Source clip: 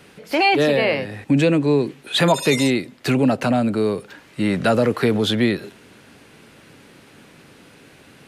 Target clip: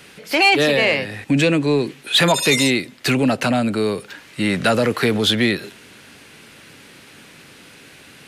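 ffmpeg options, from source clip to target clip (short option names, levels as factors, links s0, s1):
-filter_complex "[0:a]acrossover=split=1500[s0][s1];[s1]acontrast=84[s2];[s0][s2]amix=inputs=2:normalize=0,asoftclip=type=tanh:threshold=0.596"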